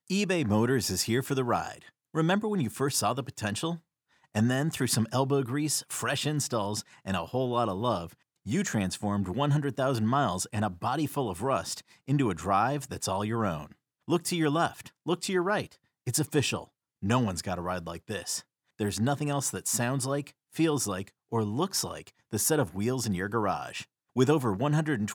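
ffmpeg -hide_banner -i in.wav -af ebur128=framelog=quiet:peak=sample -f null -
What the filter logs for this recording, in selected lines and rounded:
Integrated loudness:
  I:         -29.4 LUFS
  Threshold: -39.7 LUFS
Loudness range:
  LRA:         1.8 LU
  Threshold: -49.9 LUFS
  LRA low:   -30.8 LUFS
  LRA high:  -29.0 LUFS
Sample peak:
  Peak:      -10.3 dBFS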